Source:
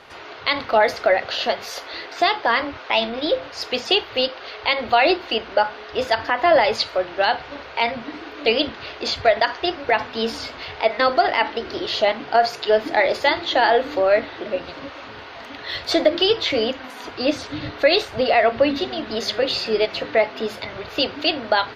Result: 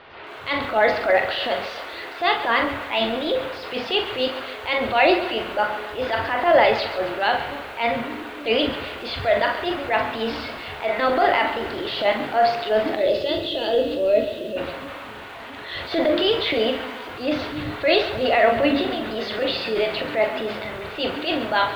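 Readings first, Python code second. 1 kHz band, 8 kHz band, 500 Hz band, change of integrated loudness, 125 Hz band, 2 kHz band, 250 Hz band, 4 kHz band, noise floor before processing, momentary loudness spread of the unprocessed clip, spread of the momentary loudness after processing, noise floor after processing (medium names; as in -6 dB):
-1.5 dB, no reading, -1.0 dB, -1.5 dB, +2.0 dB, -1.0 dB, +1.0 dB, -3.0 dB, -38 dBFS, 12 LU, 12 LU, -36 dBFS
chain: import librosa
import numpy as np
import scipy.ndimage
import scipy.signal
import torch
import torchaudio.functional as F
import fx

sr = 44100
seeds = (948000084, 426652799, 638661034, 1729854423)

p1 = fx.transient(x, sr, attack_db=-9, sustain_db=4)
p2 = scipy.signal.sosfilt(scipy.signal.butter(4, 3700.0, 'lowpass', fs=sr, output='sos'), p1)
p3 = fx.spec_box(p2, sr, start_s=12.95, length_s=1.62, low_hz=680.0, high_hz=2500.0, gain_db=-16)
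p4 = p3 + fx.room_early_taps(p3, sr, ms=(23, 43, 63), db=(-16.5, -8.5, -16.5), dry=0)
y = fx.echo_crushed(p4, sr, ms=137, feedback_pct=55, bits=7, wet_db=-12.5)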